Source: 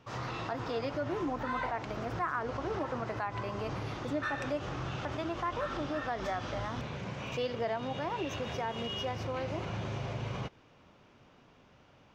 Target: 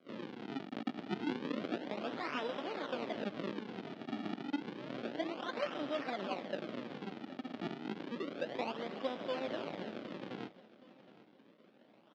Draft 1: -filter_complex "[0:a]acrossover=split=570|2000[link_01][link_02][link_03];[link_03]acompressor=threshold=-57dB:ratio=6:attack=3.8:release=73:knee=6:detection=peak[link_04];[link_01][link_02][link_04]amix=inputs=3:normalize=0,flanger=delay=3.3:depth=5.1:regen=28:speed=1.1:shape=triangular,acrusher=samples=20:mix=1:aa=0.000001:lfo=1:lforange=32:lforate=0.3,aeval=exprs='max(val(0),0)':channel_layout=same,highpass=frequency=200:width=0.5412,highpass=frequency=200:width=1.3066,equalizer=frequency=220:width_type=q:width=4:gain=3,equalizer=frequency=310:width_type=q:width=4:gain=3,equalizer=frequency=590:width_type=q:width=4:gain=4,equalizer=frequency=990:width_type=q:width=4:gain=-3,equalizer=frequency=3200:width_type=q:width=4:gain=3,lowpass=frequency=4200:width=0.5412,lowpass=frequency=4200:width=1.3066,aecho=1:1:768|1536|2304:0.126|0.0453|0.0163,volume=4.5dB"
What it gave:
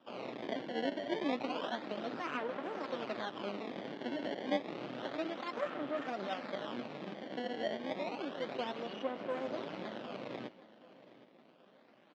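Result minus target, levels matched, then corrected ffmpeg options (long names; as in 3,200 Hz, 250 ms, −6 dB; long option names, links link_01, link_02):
sample-and-hold swept by an LFO: distortion −7 dB
-filter_complex "[0:a]acrossover=split=570|2000[link_01][link_02][link_03];[link_03]acompressor=threshold=-57dB:ratio=6:attack=3.8:release=73:knee=6:detection=peak[link_04];[link_01][link_02][link_04]amix=inputs=3:normalize=0,flanger=delay=3.3:depth=5.1:regen=28:speed=1.1:shape=triangular,acrusher=samples=48:mix=1:aa=0.000001:lfo=1:lforange=76.8:lforate=0.3,aeval=exprs='max(val(0),0)':channel_layout=same,highpass=frequency=200:width=0.5412,highpass=frequency=200:width=1.3066,equalizer=frequency=220:width_type=q:width=4:gain=3,equalizer=frequency=310:width_type=q:width=4:gain=3,equalizer=frequency=590:width_type=q:width=4:gain=4,equalizer=frequency=990:width_type=q:width=4:gain=-3,equalizer=frequency=3200:width_type=q:width=4:gain=3,lowpass=frequency=4200:width=0.5412,lowpass=frequency=4200:width=1.3066,aecho=1:1:768|1536|2304:0.126|0.0453|0.0163,volume=4.5dB"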